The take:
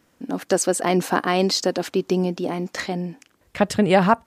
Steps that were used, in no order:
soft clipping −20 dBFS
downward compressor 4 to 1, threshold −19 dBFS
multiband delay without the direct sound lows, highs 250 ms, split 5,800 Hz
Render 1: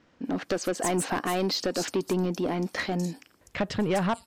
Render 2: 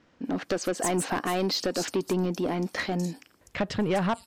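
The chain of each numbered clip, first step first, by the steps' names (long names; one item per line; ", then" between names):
downward compressor, then multiband delay without the direct sound, then soft clipping
multiband delay without the direct sound, then downward compressor, then soft clipping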